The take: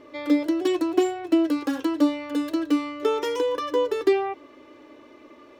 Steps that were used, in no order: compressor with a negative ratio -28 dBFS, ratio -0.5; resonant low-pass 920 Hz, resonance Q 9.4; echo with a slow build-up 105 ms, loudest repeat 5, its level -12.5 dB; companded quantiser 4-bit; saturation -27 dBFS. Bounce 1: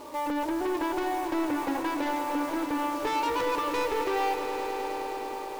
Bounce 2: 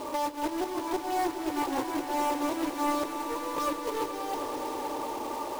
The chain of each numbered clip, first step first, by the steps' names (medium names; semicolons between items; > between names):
resonant low-pass > companded quantiser > saturation > compressor with a negative ratio > echo with a slow build-up; resonant low-pass > compressor with a negative ratio > saturation > companded quantiser > echo with a slow build-up